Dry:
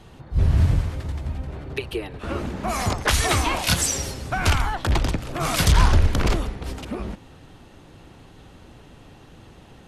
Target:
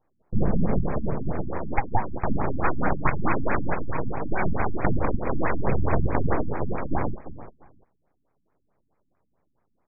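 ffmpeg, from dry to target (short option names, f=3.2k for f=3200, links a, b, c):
-filter_complex "[0:a]equalizer=f=500:t=o:w=1.5:g=14,agate=range=-32dB:threshold=-30dB:ratio=16:detection=peak,highshelf=f=4.7k:g=7.5,asplit=2[a][b];[b]aecho=0:1:346|692:0.178|0.0285[c];[a][c]amix=inputs=2:normalize=0,acompressor=threshold=-18dB:ratio=6,aresample=16000,aeval=exprs='abs(val(0))':c=same,aresample=44100,afftfilt=real='re*lt(b*sr/1024,290*pow(2600/290,0.5+0.5*sin(2*PI*4.6*pts/sr)))':imag='im*lt(b*sr/1024,290*pow(2600/290,0.5+0.5*sin(2*PI*4.6*pts/sr)))':win_size=1024:overlap=0.75,volume=3dB"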